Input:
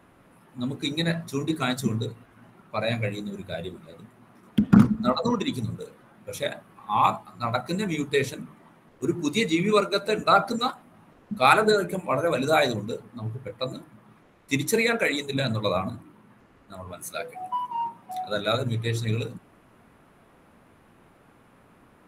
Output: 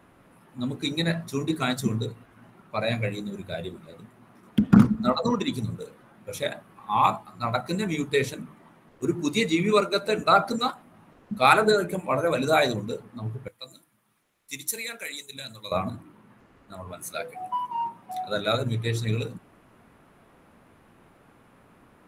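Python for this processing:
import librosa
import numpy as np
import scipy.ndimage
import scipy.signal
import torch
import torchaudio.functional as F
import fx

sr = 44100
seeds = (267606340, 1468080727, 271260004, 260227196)

y = fx.pre_emphasis(x, sr, coefficient=0.9, at=(13.48, 15.72))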